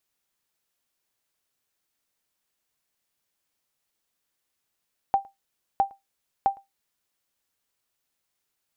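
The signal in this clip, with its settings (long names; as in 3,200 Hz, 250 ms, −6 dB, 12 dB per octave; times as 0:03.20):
ping with an echo 788 Hz, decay 0.17 s, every 0.66 s, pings 3, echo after 0.11 s, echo −26.5 dB −12.5 dBFS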